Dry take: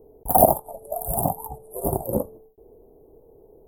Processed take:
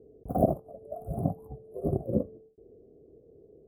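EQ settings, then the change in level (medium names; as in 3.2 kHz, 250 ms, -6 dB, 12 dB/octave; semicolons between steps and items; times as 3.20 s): boxcar filter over 49 samples; high-pass 76 Hz 12 dB/octave; 0.0 dB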